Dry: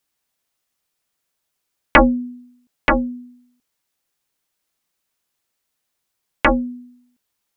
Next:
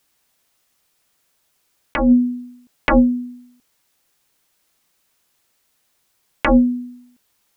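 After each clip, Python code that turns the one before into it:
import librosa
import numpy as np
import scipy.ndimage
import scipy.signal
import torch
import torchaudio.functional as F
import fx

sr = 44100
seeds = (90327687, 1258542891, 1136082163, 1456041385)

y = fx.over_compress(x, sr, threshold_db=-19.0, ratio=-1.0)
y = y * librosa.db_to_amplitude(6.0)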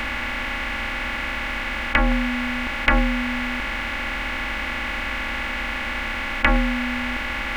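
y = fx.bin_compress(x, sr, power=0.2)
y = fx.graphic_eq_10(y, sr, hz=(125, 250, 500, 1000, 2000), db=(-4, -11, -10, -4, 3))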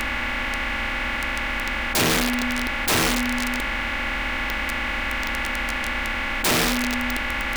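y = (np.mod(10.0 ** (16.0 / 20.0) * x + 1.0, 2.0) - 1.0) / 10.0 ** (16.0 / 20.0)
y = y * librosa.db_to_amplitude(1.0)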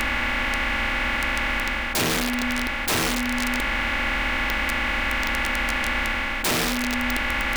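y = fx.rider(x, sr, range_db=10, speed_s=0.5)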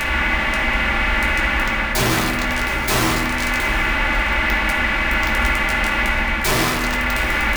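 y = x + 10.0 ** (-14.5 / 20.0) * np.pad(x, (int(726 * sr / 1000.0), 0))[:len(x)]
y = fx.rev_fdn(y, sr, rt60_s=1.2, lf_ratio=1.4, hf_ratio=0.35, size_ms=46.0, drr_db=-4.0)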